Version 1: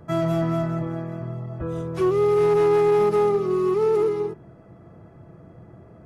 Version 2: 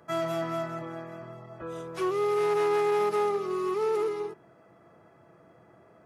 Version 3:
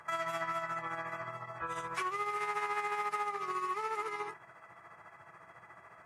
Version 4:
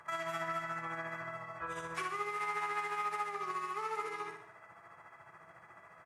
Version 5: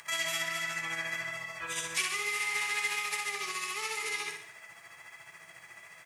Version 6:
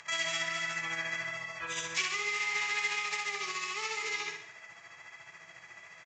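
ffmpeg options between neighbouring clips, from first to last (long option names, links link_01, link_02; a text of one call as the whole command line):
ffmpeg -i in.wav -af "highpass=frequency=920:poles=1" out.wav
ffmpeg -i in.wav -af "equalizer=frequency=250:width_type=o:width=1:gain=-10,equalizer=frequency=500:width_type=o:width=1:gain=-6,equalizer=frequency=1000:width_type=o:width=1:gain=10,equalizer=frequency=2000:width_type=o:width=1:gain=12,equalizer=frequency=8000:width_type=o:width=1:gain=9,acompressor=threshold=-32dB:ratio=4,tremolo=f=14:d=0.52" out.wav
ffmpeg -i in.wav -af "aecho=1:1:61|122|183|244|305|366:0.473|0.237|0.118|0.0591|0.0296|0.0148,volume=-2.5dB" out.wav
ffmpeg -i in.wav -af "flanger=delay=4.1:depth=4.6:regen=-69:speed=1.3:shape=triangular,alimiter=level_in=10.5dB:limit=-24dB:level=0:latency=1:release=44,volume=-10.5dB,aexciter=amount=5.8:drive=7.9:freq=2000,volume=3dB" out.wav
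ffmpeg -i in.wav -af "aresample=16000,aresample=44100" out.wav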